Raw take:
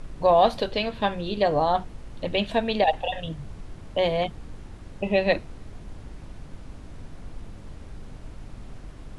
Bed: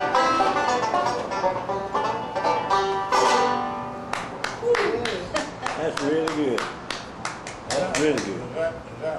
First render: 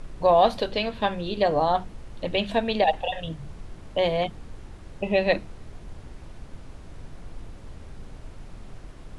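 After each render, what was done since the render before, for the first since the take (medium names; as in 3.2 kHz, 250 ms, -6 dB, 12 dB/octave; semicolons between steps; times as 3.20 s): de-hum 50 Hz, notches 6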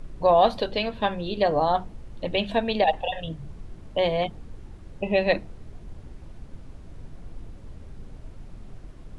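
noise reduction 6 dB, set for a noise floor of -45 dBFS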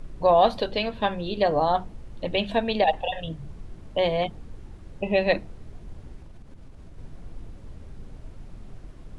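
6.16–6.98 s: compression, threshold -39 dBFS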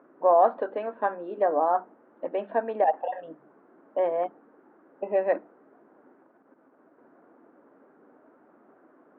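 elliptic band-pass 270–1500 Hz, stop band 60 dB; tilt EQ +1.5 dB/octave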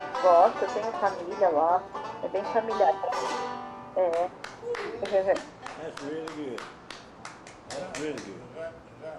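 add bed -12 dB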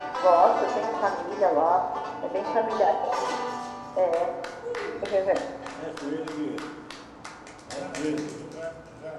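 feedback echo behind a high-pass 340 ms, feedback 33%, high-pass 4.3 kHz, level -6.5 dB; FDN reverb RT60 1.3 s, low-frequency decay 1.2×, high-frequency decay 0.35×, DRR 4.5 dB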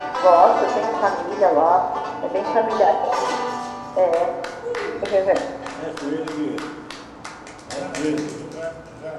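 trim +6 dB; peak limiter -2 dBFS, peak gain reduction 1 dB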